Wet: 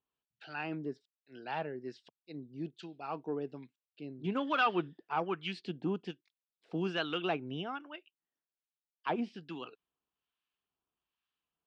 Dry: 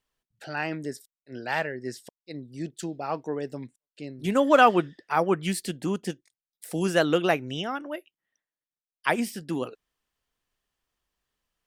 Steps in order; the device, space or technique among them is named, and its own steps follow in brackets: guitar amplifier with harmonic tremolo (harmonic tremolo 1.2 Hz, depth 70%, crossover 1.1 kHz; saturation -16 dBFS, distortion -16 dB; cabinet simulation 98–3900 Hz, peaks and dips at 110 Hz -9 dB, 220 Hz -4 dB, 560 Hz -8 dB, 1.9 kHz -9 dB, 2.7 kHz +3 dB); trim -3 dB

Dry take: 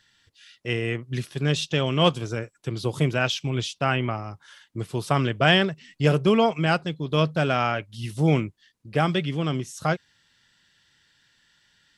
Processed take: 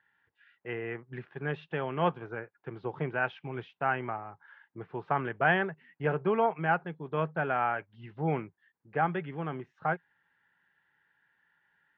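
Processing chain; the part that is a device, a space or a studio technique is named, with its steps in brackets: bass cabinet (cabinet simulation 63–2100 Hz, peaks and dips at 85 Hz -7 dB, 170 Hz +7 dB, 310 Hz -5 dB, 570 Hz -4 dB, 840 Hz +8 dB, 1.6 kHz +6 dB); resonant low shelf 260 Hz -6.5 dB, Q 1.5; trim -7.5 dB

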